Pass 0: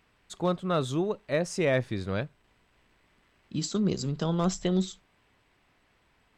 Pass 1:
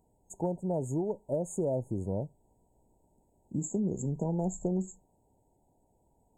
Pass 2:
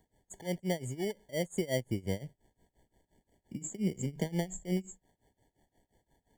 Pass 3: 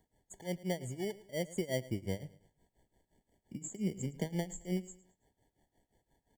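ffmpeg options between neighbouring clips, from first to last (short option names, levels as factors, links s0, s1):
-af "afftfilt=real='re*(1-between(b*sr/4096,970,6500))':imag='im*(1-between(b*sr/4096,970,6500))':win_size=4096:overlap=0.75,acompressor=threshold=0.0447:ratio=6"
-filter_complex "[0:a]tremolo=f=5.7:d=0.92,acrossover=split=280|3600[s0][s1][s2];[s1]acrusher=samples=17:mix=1:aa=0.000001[s3];[s0][s3][s2]amix=inputs=3:normalize=0,volume=1.19"
-af "aecho=1:1:109|218|327:0.112|0.0404|0.0145,volume=0.708"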